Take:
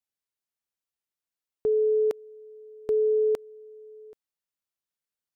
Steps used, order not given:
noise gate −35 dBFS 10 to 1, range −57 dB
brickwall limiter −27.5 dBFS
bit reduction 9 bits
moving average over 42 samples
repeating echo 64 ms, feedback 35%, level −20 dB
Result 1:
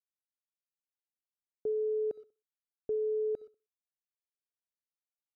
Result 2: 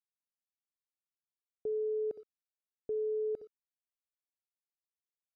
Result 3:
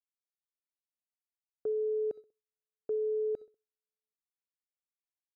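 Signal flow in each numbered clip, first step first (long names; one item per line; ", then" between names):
noise gate, then bit reduction, then moving average, then brickwall limiter, then repeating echo
repeating echo, then noise gate, then bit reduction, then brickwall limiter, then moving average
bit reduction, then moving average, then noise gate, then brickwall limiter, then repeating echo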